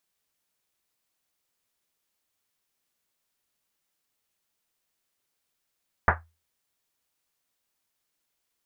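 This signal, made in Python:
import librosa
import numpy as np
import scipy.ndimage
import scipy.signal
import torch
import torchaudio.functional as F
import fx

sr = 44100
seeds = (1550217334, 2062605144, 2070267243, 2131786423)

y = fx.risset_drum(sr, seeds[0], length_s=1.1, hz=82.0, decay_s=0.31, noise_hz=1200.0, noise_width_hz=1200.0, noise_pct=65)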